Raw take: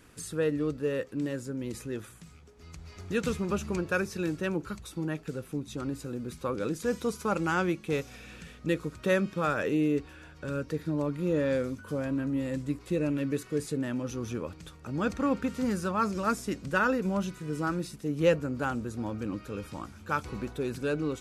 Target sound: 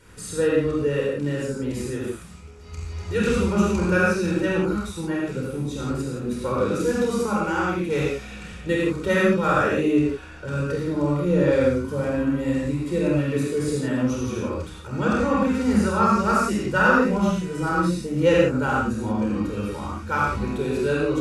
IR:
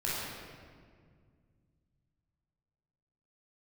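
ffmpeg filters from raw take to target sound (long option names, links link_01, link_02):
-filter_complex "[0:a]asettb=1/sr,asplit=3[link_01][link_02][link_03];[link_01]atrim=end=7.184[link_04];[link_02]atrim=start=7.18:end=7.75,asetpts=PTS-STARTPTS,afade=type=in:duration=0.004:curve=qsin,afade=type=out:start_time=0.566:duration=0.004:curve=qsin,acompressor=threshold=-32dB:ratio=2[link_05];[link_03]atrim=start=7.746[link_06];[link_04][link_05]acrossfade=duration=0.004:curve1=hsin:curve2=qsin[link_07];[link_07][link_06]acrossfade=duration=0.004:curve1=qsin:curve2=hsin[link_08];[1:a]atrim=start_sample=2205,atrim=end_sample=4410,asetrate=24255,aresample=44100[link_09];[link_08][link_09]afir=irnorm=-1:irlink=0"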